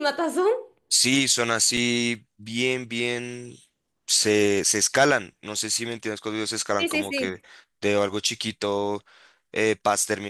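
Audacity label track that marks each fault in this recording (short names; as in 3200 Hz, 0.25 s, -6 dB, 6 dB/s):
1.770000	1.770000	gap 2.7 ms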